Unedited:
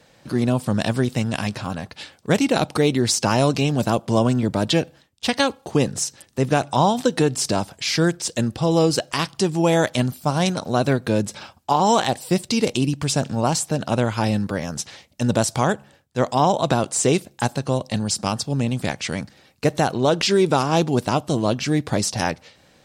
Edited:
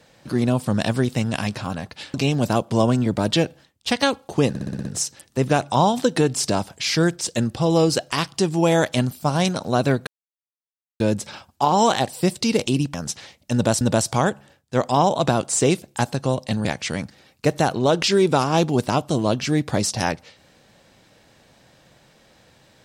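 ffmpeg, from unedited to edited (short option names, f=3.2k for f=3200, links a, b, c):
-filter_complex "[0:a]asplit=12[a][b][c][d][e][f][g][h][i][j][k][l];[a]atrim=end=2.142[m];[b]atrim=start=3.508:end=5.922[n];[c]atrim=start=5.858:end=5.922[o];[d]atrim=start=5.858:end=5.922[p];[e]atrim=start=5.858:end=5.922[q];[f]atrim=start=5.858:end=5.922[r];[g]atrim=start=5.858:end=5.922[s];[h]atrim=start=5.858:end=11.08,asetpts=PTS-STARTPTS,afade=t=out:st=5.218:d=0.004:c=hsin,apad=pad_dur=0.93[t];[i]atrim=start=11.08:end=13.022,asetpts=PTS-STARTPTS,afade=t=in:d=0.004:c=hsin[u];[j]atrim=start=14.638:end=15.512[v];[k]atrim=start=15.238:end=18.082[w];[l]atrim=start=18.838[x];[m][n]acrossfade=d=0.004:c1=hsin:c2=hsin[y];[y][o]acrossfade=d=0.004:c1=hsin:c2=hsin[z];[z][p]acrossfade=d=0.004:c1=hsin:c2=hsin[aa];[aa][q]acrossfade=d=0.004:c1=hsin:c2=hsin[ab];[ab][r]acrossfade=d=0.004:c1=hsin:c2=hsin[ac];[ac][s]acrossfade=d=0.004:c1=hsin:c2=hsin[ad];[t][u]concat=n=2:v=0:a=1[ae];[ad][ae]acrossfade=d=0.004:c1=hsin:c2=hsin[af];[af][v]acrossfade=d=0.004:c1=hsin:c2=hsin[ag];[ag][w]acrossfade=d=0.004:c1=hsin:c2=hsin[ah];[ah][x]acrossfade=d=0.004:c1=hsin:c2=hsin"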